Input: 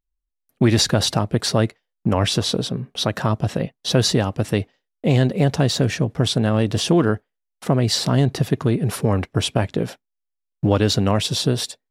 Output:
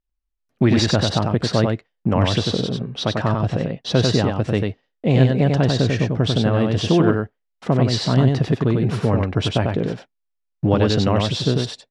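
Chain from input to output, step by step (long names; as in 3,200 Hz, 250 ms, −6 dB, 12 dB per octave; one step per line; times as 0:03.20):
high-frequency loss of the air 120 metres
on a send: single-tap delay 95 ms −3.5 dB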